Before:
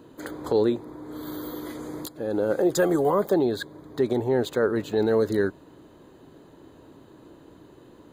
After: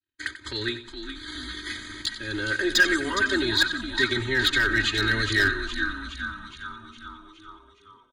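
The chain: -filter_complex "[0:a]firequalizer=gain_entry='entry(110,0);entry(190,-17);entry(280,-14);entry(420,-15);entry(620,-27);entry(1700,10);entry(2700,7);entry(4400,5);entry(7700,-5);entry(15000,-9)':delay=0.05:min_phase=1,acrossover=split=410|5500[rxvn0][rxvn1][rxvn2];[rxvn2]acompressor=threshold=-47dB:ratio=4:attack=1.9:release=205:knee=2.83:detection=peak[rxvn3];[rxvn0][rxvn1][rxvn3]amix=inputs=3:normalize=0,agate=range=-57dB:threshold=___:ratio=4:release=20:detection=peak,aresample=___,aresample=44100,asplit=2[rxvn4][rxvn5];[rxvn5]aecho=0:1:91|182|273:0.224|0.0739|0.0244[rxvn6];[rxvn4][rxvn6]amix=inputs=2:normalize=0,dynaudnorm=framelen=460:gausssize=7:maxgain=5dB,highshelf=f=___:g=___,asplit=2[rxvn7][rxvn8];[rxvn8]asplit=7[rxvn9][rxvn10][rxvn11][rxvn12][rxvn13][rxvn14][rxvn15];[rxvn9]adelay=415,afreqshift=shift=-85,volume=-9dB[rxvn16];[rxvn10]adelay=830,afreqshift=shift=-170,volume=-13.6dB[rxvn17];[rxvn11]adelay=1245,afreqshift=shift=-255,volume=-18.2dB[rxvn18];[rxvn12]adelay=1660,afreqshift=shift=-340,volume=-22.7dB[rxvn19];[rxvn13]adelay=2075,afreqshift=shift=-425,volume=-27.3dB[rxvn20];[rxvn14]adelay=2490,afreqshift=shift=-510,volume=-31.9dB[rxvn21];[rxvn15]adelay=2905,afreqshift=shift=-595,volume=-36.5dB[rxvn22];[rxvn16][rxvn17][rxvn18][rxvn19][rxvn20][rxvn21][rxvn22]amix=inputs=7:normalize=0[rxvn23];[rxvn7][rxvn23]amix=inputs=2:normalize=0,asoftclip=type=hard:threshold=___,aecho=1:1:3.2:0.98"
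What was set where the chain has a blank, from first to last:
-46dB, 22050, 3600, 6.5, -16.5dB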